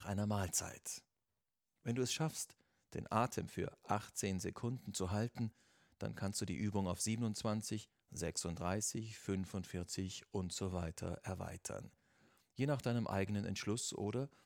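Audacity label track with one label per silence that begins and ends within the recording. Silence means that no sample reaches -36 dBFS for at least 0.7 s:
0.930000	1.870000	silence
11.790000	12.590000	silence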